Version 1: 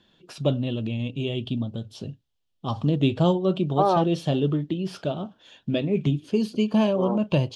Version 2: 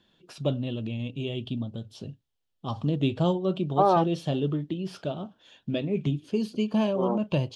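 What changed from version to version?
first voice -4.0 dB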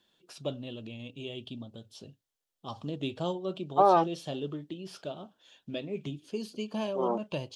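first voice -5.5 dB; master: add tone controls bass -8 dB, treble +6 dB

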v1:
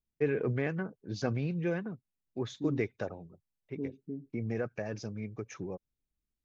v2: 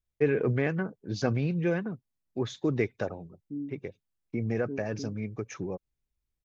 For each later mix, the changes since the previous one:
first voice +4.5 dB; second voice: entry +0.90 s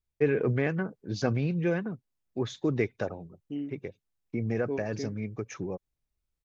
second voice: remove Butterworth band-pass 190 Hz, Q 0.87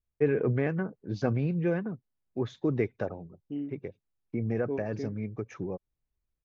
master: add LPF 1600 Hz 6 dB/oct

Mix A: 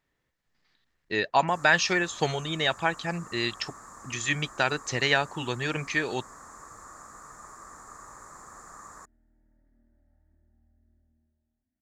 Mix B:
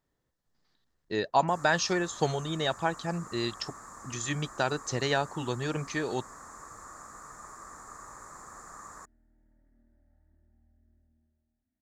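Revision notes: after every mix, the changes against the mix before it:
speech: add bell 2300 Hz -11.5 dB 1.2 oct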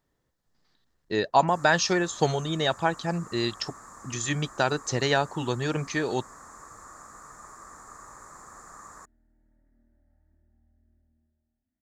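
speech +4.0 dB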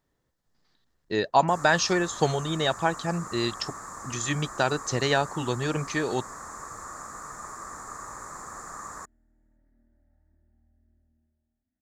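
first sound +7.0 dB

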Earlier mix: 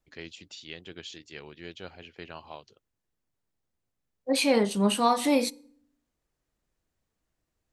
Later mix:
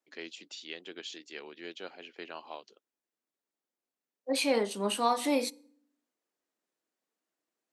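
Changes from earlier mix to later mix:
second voice -4.0 dB; master: add HPF 250 Hz 24 dB/oct

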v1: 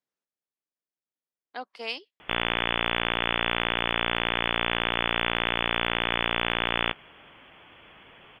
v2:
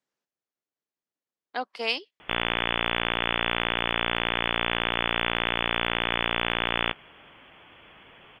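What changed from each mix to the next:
speech +6.0 dB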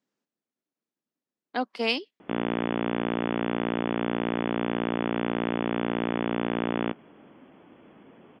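background: add band-pass 340 Hz, Q 0.57; master: add bell 240 Hz +11.5 dB 1.4 oct

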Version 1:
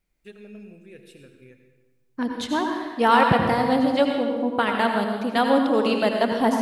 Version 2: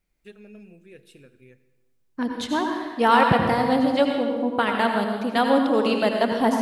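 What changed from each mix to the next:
first voice: send -10.0 dB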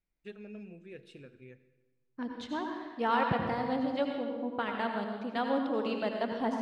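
second voice -11.0 dB; master: add air absorption 96 m

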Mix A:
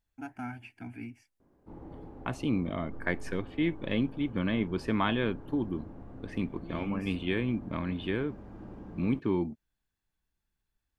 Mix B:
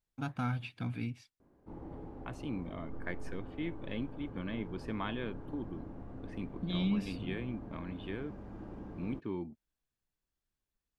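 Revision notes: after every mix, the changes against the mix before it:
first voice: remove fixed phaser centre 770 Hz, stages 8; second voice -9.5 dB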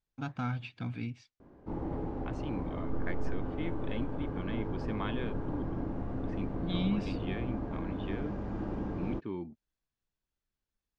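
background +10.0 dB; master: add LPF 7000 Hz 24 dB/oct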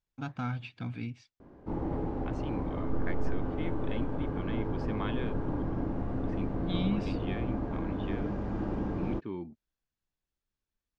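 background +3.0 dB

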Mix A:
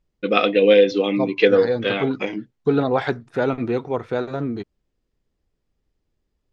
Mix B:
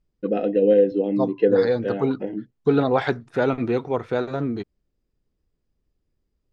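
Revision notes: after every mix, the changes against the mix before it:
first voice: add running mean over 38 samples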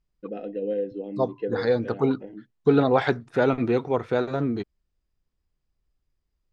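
first voice -11.5 dB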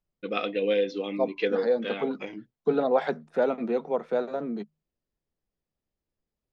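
first voice: remove running mean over 38 samples; second voice: add rippled Chebyshev high-pass 150 Hz, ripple 9 dB

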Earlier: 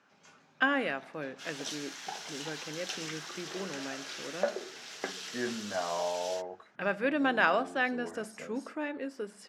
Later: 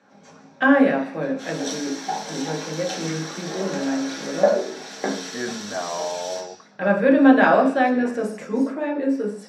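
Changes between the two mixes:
second voice +5.0 dB; reverb: on

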